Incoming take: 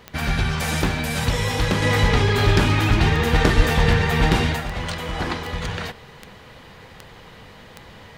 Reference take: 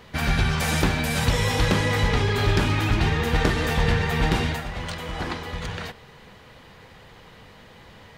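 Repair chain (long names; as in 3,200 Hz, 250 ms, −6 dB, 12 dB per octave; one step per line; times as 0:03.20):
click removal
high-pass at the plosives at 0:03.56
level correction −4 dB, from 0:01.82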